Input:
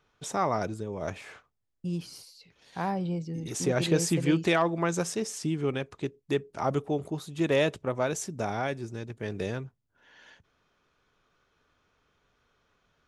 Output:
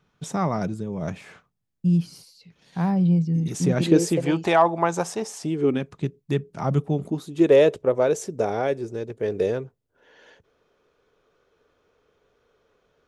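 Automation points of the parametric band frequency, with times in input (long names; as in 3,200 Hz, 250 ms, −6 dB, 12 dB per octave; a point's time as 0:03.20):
parametric band +13.5 dB 0.94 octaves
0:03.73 170 Hz
0:04.31 820 Hz
0:05.38 820 Hz
0:05.89 160 Hz
0:06.91 160 Hz
0:07.51 460 Hz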